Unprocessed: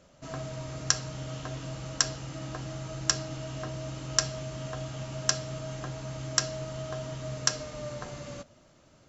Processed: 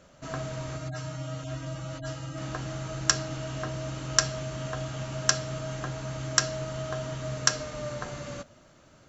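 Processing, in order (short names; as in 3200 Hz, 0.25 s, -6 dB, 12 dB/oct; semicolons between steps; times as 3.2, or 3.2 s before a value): 0.77–2.38 median-filter separation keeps harmonic; bell 1500 Hz +4 dB 0.72 oct; notch 5100 Hz, Q 27; gain +2.5 dB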